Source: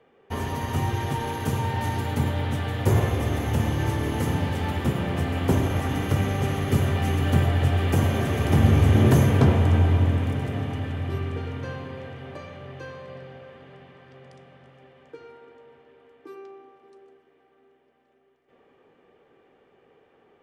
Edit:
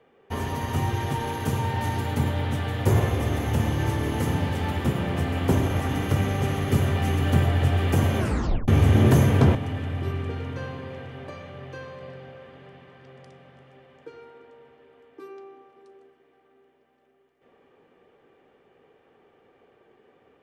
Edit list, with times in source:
0:08.19: tape stop 0.49 s
0:09.55–0:10.62: remove

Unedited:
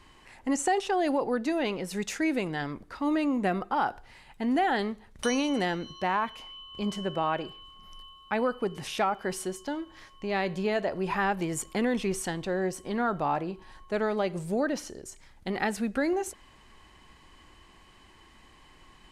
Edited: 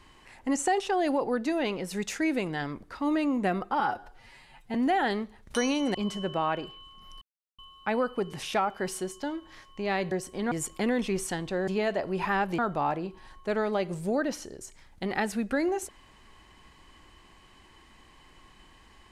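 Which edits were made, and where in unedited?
0:03.80–0:04.43: time-stretch 1.5×
0:05.63–0:06.76: remove
0:08.03: splice in silence 0.37 s
0:10.56–0:11.47: swap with 0:12.63–0:13.03

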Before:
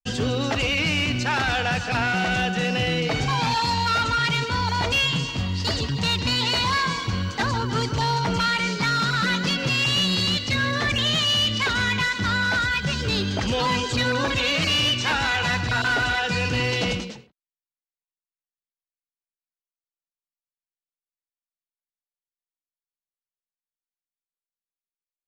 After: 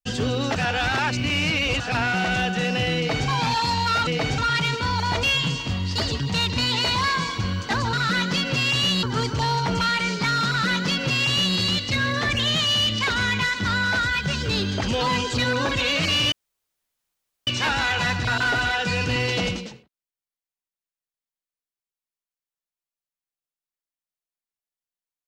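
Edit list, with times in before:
0:00.56–0:01.80: reverse
0:02.97–0:03.28: duplicate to 0:04.07
0:09.06–0:10.16: duplicate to 0:07.62
0:14.91: splice in room tone 1.15 s

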